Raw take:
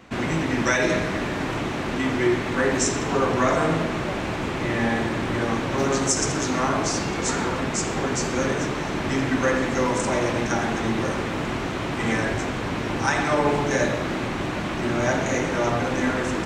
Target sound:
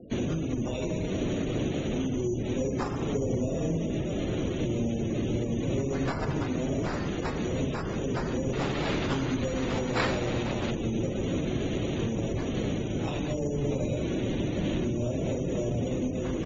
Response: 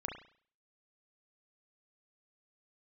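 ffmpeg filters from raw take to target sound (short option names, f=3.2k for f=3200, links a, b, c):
-filter_complex "[0:a]asuperstop=centerf=1400:order=8:qfactor=0.5,lowshelf=f=280:g=-6,acrossover=split=180[a][b];[b]acompressor=threshold=-35dB:ratio=6[c];[a][c]amix=inputs=2:normalize=0,asplit=7[d][e][f][g][h][i][j];[e]adelay=93,afreqshift=-46,volume=-18dB[k];[f]adelay=186,afreqshift=-92,volume=-22.2dB[l];[g]adelay=279,afreqshift=-138,volume=-26.3dB[m];[h]adelay=372,afreqshift=-184,volume=-30.5dB[n];[i]adelay=465,afreqshift=-230,volume=-34.6dB[o];[j]adelay=558,afreqshift=-276,volume=-38.8dB[p];[d][k][l][m][n][o][p]amix=inputs=7:normalize=0,alimiter=level_in=3dB:limit=-24dB:level=0:latency=1:release=399,volume=-3dB,asplit=3[q][r][s];[q]afade=t=out:st=8.52:d=0.02[t];[r]aemphasis=mode=production:type=75kf,afade=t=in:st=8.52:d=0.02,afade=t=out:st=10.7:d=0.02[u];[s]afade=t=in:st=10.7:d=0.02[v];[t][u][v]amix=inputs=3:normalize=0,acrusher=samples=7:mix=1:aa=0.000001,asoftclip=type=tanh:threshold=-26.5dB,afftfilt=real='re*gte(hypot(re,im),0.00251)':imag='im*gte(hypot(re,im),0.00251)':win_size=1024:overlap=0.75,volume=7.5dB" -ar 48000 -c:a aac -b:a 24k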